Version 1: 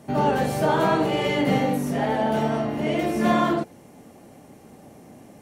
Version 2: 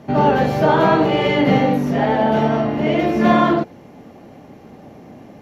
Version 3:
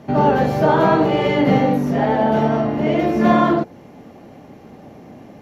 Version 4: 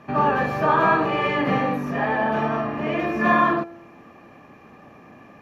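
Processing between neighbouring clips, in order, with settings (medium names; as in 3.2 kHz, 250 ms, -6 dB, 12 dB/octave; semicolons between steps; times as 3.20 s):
boxcar filter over 5 samples; trim +6.5 dB
dynamic bell 2.9 kHz, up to -4 dB, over -38 dBFS, Q 0.88
feedback comb 340 Hz, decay 0.92 s, mix 50%; small resonant body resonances 1.2/1.7/2.4 kHz, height 17 dB, ringing for 20 ms; trim -2.5 dB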